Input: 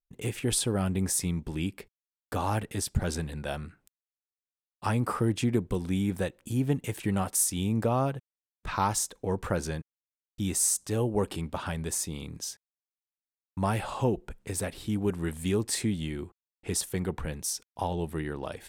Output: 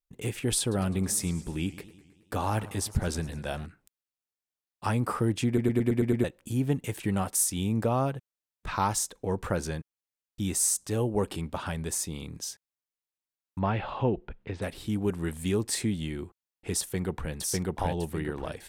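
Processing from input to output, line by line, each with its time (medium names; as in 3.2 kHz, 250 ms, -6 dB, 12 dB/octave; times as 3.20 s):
0.60–3.66 s: modulated delay 107 ms, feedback 63%, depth 188 cents, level -18 dB
5.47 s: stutter in place 0.11 s, 7 plays
13.59–14.62 s: low-pass 3.6 kHz 24 dB/octave
16.80–17.33 s: echo throw 600 ms, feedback 35%, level 0 dB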